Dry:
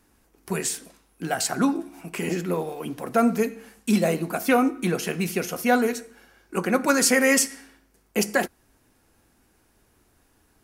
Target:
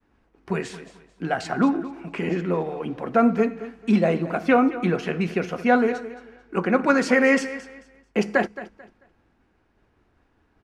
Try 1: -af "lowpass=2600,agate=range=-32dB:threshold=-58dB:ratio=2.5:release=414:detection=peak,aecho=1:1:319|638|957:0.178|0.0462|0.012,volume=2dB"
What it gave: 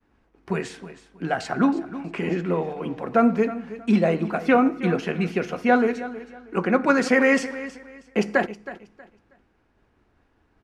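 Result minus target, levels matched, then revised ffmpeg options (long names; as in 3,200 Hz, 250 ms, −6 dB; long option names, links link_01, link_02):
echo 99 ms late
-af "lowpass=2600,agate=range=-32dB:threshold=-58dB:ratio=2.5:release=414:detection=peak,aecho=1:1:220|440|660:0.178|0.0462|0.012,volume=2dB"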